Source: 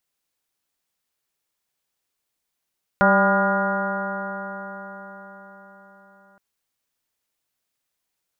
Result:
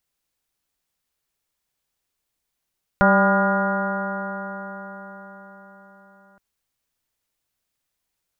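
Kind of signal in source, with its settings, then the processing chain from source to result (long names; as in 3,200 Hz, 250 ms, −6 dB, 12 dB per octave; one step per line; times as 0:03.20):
stiff-string partials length 3.37 s, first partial 194 Hz, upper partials −9/1/−2/−3/−6/2/−14.5/−15.5 dB, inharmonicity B 0.002, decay 5.00 s, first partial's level −19 dB
low-shelf EQ 100 Hz +10.5 dB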